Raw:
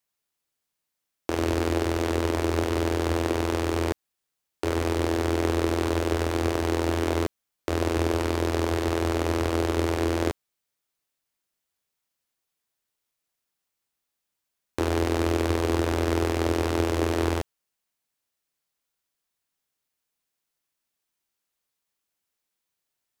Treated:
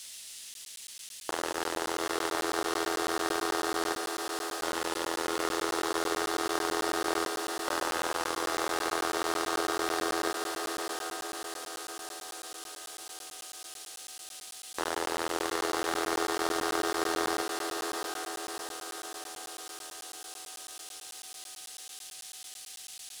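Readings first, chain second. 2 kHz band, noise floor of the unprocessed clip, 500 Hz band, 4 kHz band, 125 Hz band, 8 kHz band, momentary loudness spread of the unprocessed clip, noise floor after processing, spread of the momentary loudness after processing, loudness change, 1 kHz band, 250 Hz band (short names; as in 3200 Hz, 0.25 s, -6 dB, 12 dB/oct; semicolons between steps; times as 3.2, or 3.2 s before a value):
+0.5 dB, -83 dBFS, -6.5 dB, +2.0 dB, -26.0 dB, +5.5 dB, 6 LU, -47 dBFS, 12 LU, -7.0 dB, +0.5 dB, -10.0 dB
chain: on a send: diffused feedback echo 0.732 s, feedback 58%, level -5 dB; on the sum: band noise 2100–11000 Hz -46 dBFS; HPF 840 Hz 12 dB/oct; in parallel at -9 dB: crossover distortion -43 dBFS; on the sum: requantised 10-bit, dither triangular; bell 2300 Hz -7 dB 0.36 oct; echo with dull and thin repeats by turns 0.146 s, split 1400 Hz, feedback 61%, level -12 dB; crackling interface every 0.11 s, samples 512, zero, from 0.54; slew limiter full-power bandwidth 280 Hz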